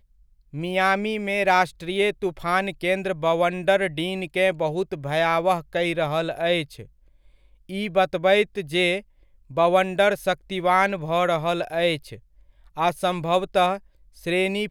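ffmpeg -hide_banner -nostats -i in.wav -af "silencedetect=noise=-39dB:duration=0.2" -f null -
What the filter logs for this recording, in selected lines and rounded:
silence_start: 0.00
silence_end: 0.54 | silence_duration: 0.54
silence_start: 6.85
silence_end: 7.69 | silence_duration: 0.84
silence_start: 9.01
silence_end: 9.50 | silence_duration: 0.50
silence_start: 12.17
silence_end: 12.76 | silence_duration: 0.59
silence_start: 13.79
silence_end: 14.17 | silence_duration: 0.39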